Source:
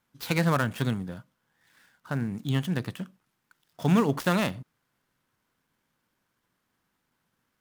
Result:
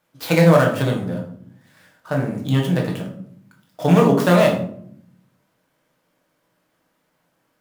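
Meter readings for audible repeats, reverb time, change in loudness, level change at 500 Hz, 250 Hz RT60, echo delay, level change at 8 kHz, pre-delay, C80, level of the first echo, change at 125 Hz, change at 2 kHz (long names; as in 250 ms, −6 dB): no echo audible, 0.60 s, +9.5 dB, +14.5 dB, 1.1 s, no echo audible, +6.5 dB, 6 ms, 11.5 dB, no echo audible, +9.0 dB, +7.5 dB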